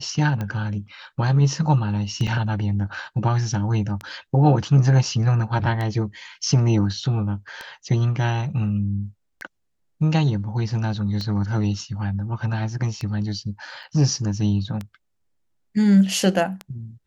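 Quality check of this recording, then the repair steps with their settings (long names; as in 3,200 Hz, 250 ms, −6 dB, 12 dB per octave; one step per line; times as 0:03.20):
scratch tick 33 1/3 rpm −16 dBFS
0:02.27–0:02.28: drop-out 5.4 ms
0:13.83–0:13.84: drop-out 5.8 ms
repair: click removal
repair the gap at 0:02.27, 5.4 ms
repair the gap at 0:13.83, 5.8 ms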